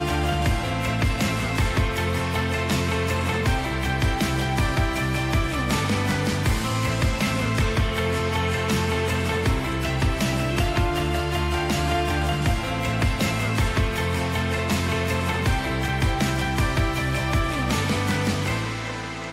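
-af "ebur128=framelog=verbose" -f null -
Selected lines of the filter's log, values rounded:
Integrated loudness:
  I:         -23.7 LUFS
  Threshold: -33.7 LUFS
Loudness range:
  LRA:         0.4 LU
  Threshold: -43.6 LUFS
  LRA low:   -23.7 LUFS
  LRA high:  -23.3 LUFS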